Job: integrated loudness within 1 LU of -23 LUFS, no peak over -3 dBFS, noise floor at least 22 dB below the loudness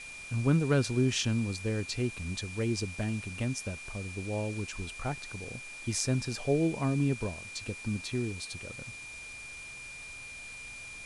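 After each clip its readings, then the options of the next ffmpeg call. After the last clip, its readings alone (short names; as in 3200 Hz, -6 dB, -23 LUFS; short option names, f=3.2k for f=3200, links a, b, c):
steady tone 2400 Hz; tone level -43 dBFS; noise floor -45 dBFS; noise floor target -55 dBFS; loudness -33.0 LUFS; peak -13.0 dBFS; loudness target -23.0 LUFS
-> -af "bandreject=f=2.4k:w=30"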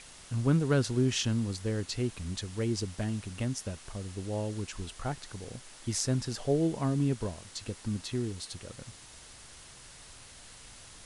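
steady tone none; noise floor -52 dBFS; noise floor target -55 dBFS
-> -af "afftdn=nr=6:nf=-52"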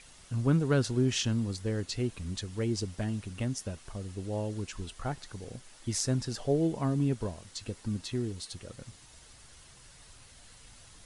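noise floor -55 dBFS; loudness -32.5 LUFS; peak -13.0 dBFS; loudness target -23.0 LUFS
-> -af "volume=9.5dB"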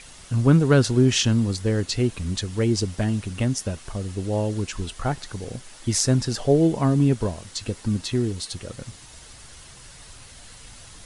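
loudness -23.0 LUFS; peak -3.5 dBFS; noise floor -46 dBFS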